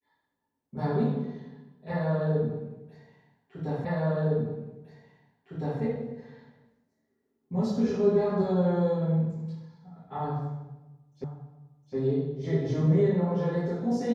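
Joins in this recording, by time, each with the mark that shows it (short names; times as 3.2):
3.85 repeat of the last 1.96 s
11.24 repeat of the last 0.71 s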